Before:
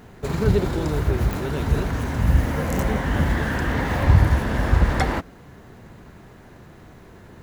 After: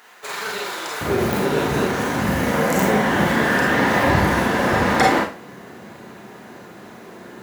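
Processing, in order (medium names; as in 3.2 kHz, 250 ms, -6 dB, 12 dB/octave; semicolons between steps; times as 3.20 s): high-pass 1.1 kHz 12 dB/octave, from 1.01 s 220 Hz; Schroeder reverb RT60 0.34 s, combs from 31 ms, DRR -0.5 dB; trim +5.5 dB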